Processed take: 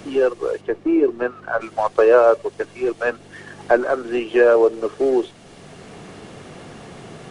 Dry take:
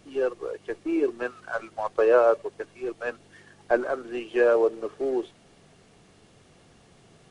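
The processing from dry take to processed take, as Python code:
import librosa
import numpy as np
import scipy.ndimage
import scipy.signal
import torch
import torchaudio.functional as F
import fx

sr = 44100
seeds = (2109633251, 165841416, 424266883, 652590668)

y = fx.lowpass(x, sr, hz=1200.0, slope=6, at=(0.6, 1.6), fade=0.02)
y = fx.band_squash(y, sr, depth_pct=40)
y = F.gain(torch.from_numpy(y), 8.5).numpy()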